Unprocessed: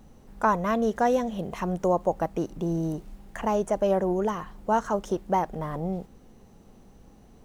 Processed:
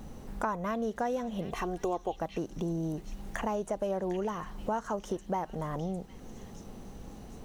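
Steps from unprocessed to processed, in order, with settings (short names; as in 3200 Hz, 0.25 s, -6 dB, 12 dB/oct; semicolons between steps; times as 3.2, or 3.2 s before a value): 1.53–2.2 comb 2.6 ms, depth 58%; compressor 3:1, threshold -42 dBFS, peak gain reduction 17.5 dB; delay with a stepping band-pass 0.755 s, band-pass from 3500 Hz, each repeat 0.7 oct, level -4 dB; gain +7 dB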